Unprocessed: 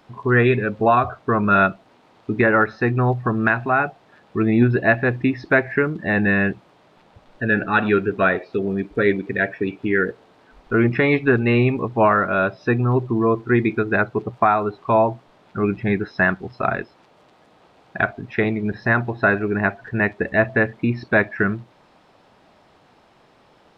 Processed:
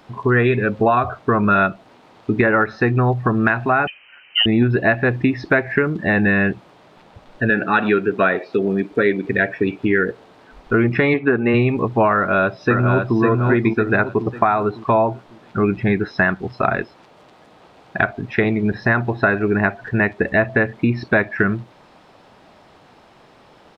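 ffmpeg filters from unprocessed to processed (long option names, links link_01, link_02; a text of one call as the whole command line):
ffmpeg -i in.wav -filter_complex "[0:a]asettb=1/sr,asplit=3[link_01][link_02][link_03];[link_01]atrim=end=3.874[link_04];[link_02]atrim=start=3.87:end=4.46,asetpts=PTS-STARTPTS,afade=type=in:duration=0.004:curve=qsin,afade=type=out:start_time=0.586:duration=0.004:curve=qsin,lowpass=frequency=2700:width_type=q:width=0.5098,lowpass=frequency=2700:width_type=q:width=0.6013,lowpass=frequency=2700:width_type=q:width=0.9,lowpass=frequency=2700:width_type=q:width=2.563,afreqshift=-3200[link_05];[link_03]atrim=start=4.456[link_06];[link_04][link_05]acrossfade=duration=0.004:curve1=hsin:curve2=qsin[link_07];[link_07][link_06]acrossfade=duration=0.004:curve1=qsin:curve2=hsin,asettb=1/sr,asplit=3[link_08][link_09][link_10];[link_08]atrim=end=7.504[link_11];[link_09]atrim=start=7.5:end=9.25,asetpts=PTS-STARTPTS,afade=type=in:duration=0.004:curve=qsin,afade=type=out:start_time=1.746:duration=0.004:curve=qsin,highpass=160[link_12];[link_10]atrim=start=9.246[link_13];[link_11][link_12]acrossfade=duration=0.004:curve1=hsin:curve2=qsin[link_14];[link_14][link_13]acrossfade=duration=0.004:curve1=qsin:curve2=hsin,asplit=3[link_15][link_16][link_17];[link_15]afade=type=out:start_time=11.13:duration=0.02[link_18];[link_16]highpass=180,lowpass=2200,afade=type=in:start_time=11.13:duration=0.02,afade=type=out:start_time=11.53:duration=0.02[link_19];[link_17]afade=type=in:start_time=11.53:duration=0.02[link_20];[link_18][link_19][link_20]amix=inputs=3:normalize=0,asplit=2[link_21][link_22];[link_22]afade=type=in:start_time=12.15:duration=0.01,afade=type=out:start_time=13.18:duration=0.01,aecho=0:1:550|1100|1650|2200|2750:0.707946|0.247781|0.0867234|0.0303532|0.0106236[link_23];[link_21][link_23]amix=inputs=2:normalize=0,acompressor=threshold=-19dB:ratio=3,volume=5.5dB" out.wav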